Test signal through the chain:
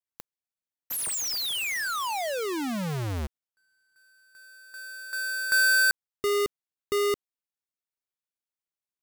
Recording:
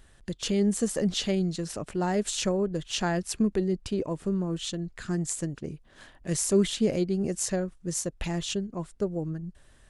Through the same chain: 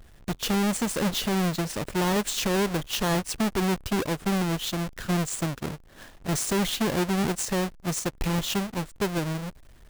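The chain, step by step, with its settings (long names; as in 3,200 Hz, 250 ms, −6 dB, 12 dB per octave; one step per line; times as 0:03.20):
each half-wave held at its own peak
brickwall limiter −20.5 dBFS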